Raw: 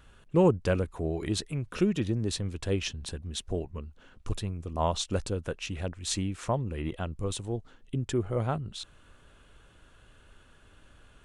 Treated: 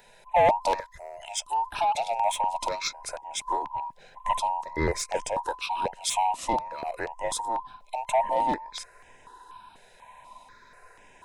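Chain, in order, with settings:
frequency inversion band by band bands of 1,000 Hz
in parallel at −10 dB: gain into a clipping stage and back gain 26 dB
0:00.80–0:01.48: on the sum: guitar amp tone stack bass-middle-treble 10-0-10
soft clipping −19 dBFS, distortion −15 dB
step-sequenced phaser 4.1 Hz 290–4,200 Hz
level +5.5 dB

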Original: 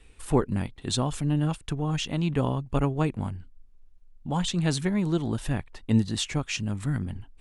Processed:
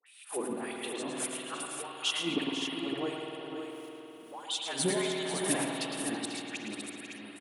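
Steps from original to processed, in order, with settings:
fade-out on the ending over 1.99 s
camcorder AGC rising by 69 dB per second
high-pass filter 190 Hz 6 dB per octave
parametric band 9,800 Hz +13.5 dB 0.34 octaves
mains-hum notches 50/100/150/200/250/300 Hz
volume swells 647 ms
all-pass dispersion highs, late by 65 ms, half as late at 1,400 Hz
auto-filter high-pass sine 1.6 Hz 250–3,500 Hz
multi-tap delay 110/164/244/493/559 ms −6.5/−17.5/−18/−10/−7 dB
spring reverb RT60 3.8 s, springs 51 ms, chirp 35 ms, DRR 1.5 dB
level −4 dB

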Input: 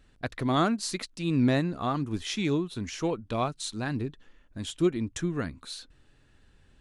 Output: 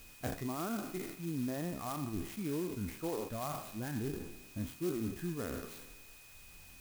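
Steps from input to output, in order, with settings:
peak hold with a decay on every bin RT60 1.25 s
reversed playback
downward compressor 6 to 1, threshold −32 dBFS, peak gain reduction 13.5 dB
reversed playback
reverb reduction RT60 1.3 s
steady tone 2,500 Hz −46 dBFS
head-to-tape spacing loss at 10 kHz 35 dB
converter with an unsteady clock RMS 0.074 ms
level +1 dB

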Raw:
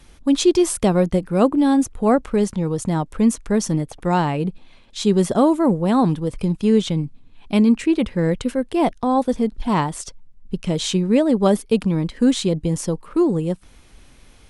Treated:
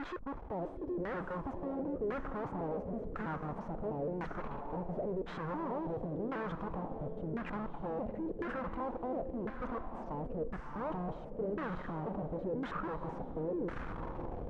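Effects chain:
slices reordered back to front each 163 ms, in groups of 3
dynamic equaliser 510 Hz, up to +6 dB, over −31 dBFS, Q 1.6
reversed playback
downward compressor 10 to 1, threshold −29 dBFS, peak gain reduction 22 dB
reversed playback
brickwall limiter −27 dBFS, peak gain reduction 10.5 dB
in parallel at −9.5 dB: decimation without filtering 10×
on the sum: tube saturation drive 55 dB, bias 0.25
feedback delay with all-pass diffusion 642 ms, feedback 45%, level −7 dB
auto-filter low-pass saw down 0.95 Hz 410–1,700 Hz
level +15.5 dB

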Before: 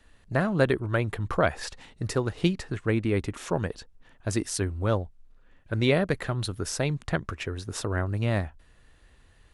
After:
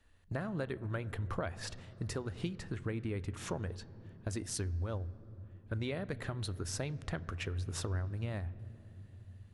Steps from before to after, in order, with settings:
noise gate −44 dBFS, range −7 dB
parametric band 88 Hz +11 dB 0.3 octaves
downward compressor, threshold −31 dBFS, peak gain reduction 14.5 dB
on a send: convolution reverb RT60 3.5 s, pre-delay 4 ms, DRR 16.5 dB
on the sum: level −3.5 dB

